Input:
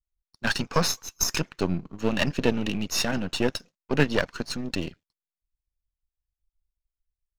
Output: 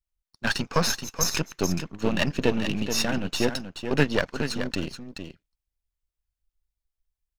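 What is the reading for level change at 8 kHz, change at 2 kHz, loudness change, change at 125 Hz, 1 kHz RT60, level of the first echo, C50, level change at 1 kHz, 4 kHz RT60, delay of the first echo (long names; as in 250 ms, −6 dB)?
+0.5 dB, +0.5 dB, +0.5 dB, +0.5 dB, no reverb audible, −8.5 dB, no reverb audible, +0.5 dB, no reverb audible, 428 ms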